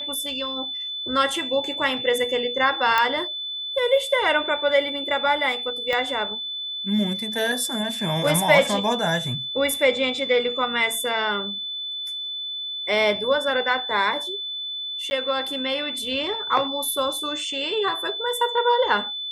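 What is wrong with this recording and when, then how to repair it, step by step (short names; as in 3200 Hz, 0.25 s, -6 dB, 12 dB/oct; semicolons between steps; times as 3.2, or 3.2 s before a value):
tone 3500 Hz -28 dBFS
2.98 pop -7 dBFS
5.93 pop -13 dBFS
15.1–15.11 gap 10 ms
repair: de-click; notch 3500 Hz, Q 30; interpolate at 15.1, 10 ms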